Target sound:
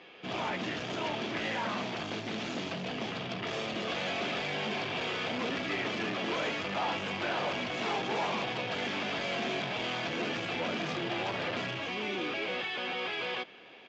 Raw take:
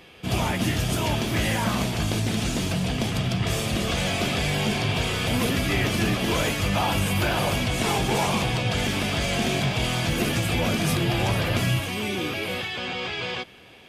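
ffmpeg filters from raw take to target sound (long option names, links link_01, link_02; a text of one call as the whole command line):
ffmpeg -i in.wav -af "aresample=16000,asoftclip=type=tanh:threshold=-24.5dB,aresample=44100,highpass=280,lowpass=3600,volume=-2dB" out.wav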